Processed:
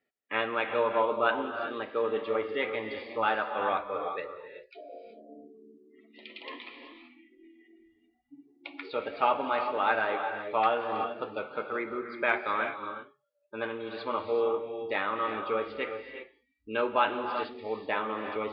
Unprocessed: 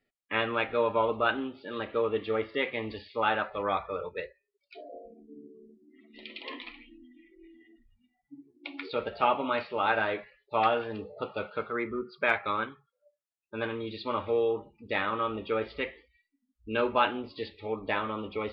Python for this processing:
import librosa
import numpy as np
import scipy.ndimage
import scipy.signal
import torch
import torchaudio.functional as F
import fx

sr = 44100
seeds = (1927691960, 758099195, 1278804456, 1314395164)

y = fx.highpass(x, sr, hz=400.0, slope=6)
y = fx.high_shelf(y, sr, hz=3100.0, db=-9.0)
y = fx.rev_gated(y, sr, seeds[0], gate_ms=410, shape='rising', drr_db=6.5)
y = y * librosa.db_to_amplitude(1.5)